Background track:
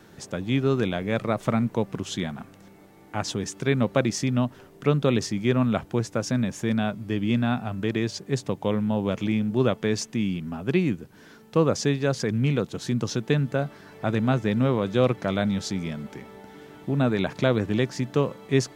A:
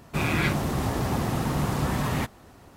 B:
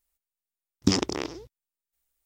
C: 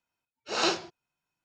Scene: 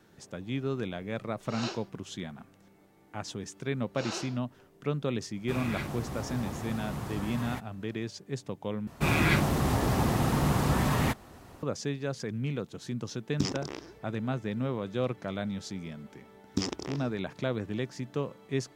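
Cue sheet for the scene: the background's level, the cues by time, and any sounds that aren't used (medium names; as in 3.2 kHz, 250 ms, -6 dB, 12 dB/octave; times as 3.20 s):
background track -9.5 dB
1.00 s: add C -11 dB
3.49 s: add C -6 dB + compression 2:1, threshold -32 dBFS
5.34 s: add A -11 dB
8.87 s: replace with A
12.53 s: add B -9 dB
15.70 s: add B -8.5 dB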